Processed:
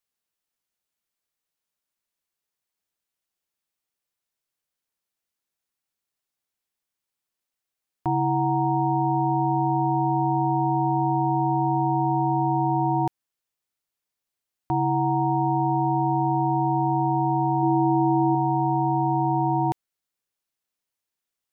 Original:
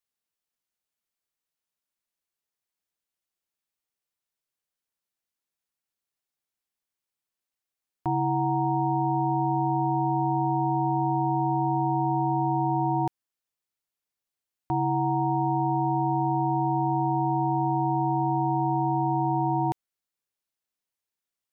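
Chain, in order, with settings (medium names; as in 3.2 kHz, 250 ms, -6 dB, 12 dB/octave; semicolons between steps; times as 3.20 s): 17.62–18.35 s: dynamic bell 340 Hz, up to +6 dB, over -46 dBFS, Q 5; trim +2.5 dB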